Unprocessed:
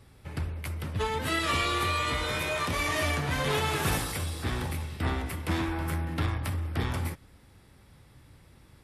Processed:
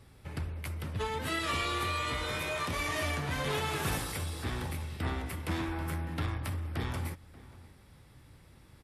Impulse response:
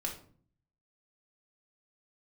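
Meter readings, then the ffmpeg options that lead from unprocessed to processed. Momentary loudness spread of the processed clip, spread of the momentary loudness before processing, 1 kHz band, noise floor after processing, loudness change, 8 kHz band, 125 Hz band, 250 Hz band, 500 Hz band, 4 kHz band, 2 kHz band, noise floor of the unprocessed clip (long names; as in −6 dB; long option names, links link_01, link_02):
8 LU, 8 LU, −4.5 dB, −57 dBFS, −4.5 dB, −4.5 dB, −4.0 dB, −4.5 dB, −4.5 dB, −4.5 dB, −4.5 dB, −57 dBFS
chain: -filter_complex "[0:a]asplit=2[link_01][link_02];[link_02]acompressor=threshold=-36dB:ratio=6,volume=-2dB[link_03];[link_01][link_03]amix=inputs=2:normalize=0,asplit=2[link_04][link_05];[link_05]adelay=583.1,volume=-19dB,highshelf=frequency=4000:gain=-13.1[link_06];[link_04][link_06]amix=inputs=2:normalize=0,volume=-6.5dB"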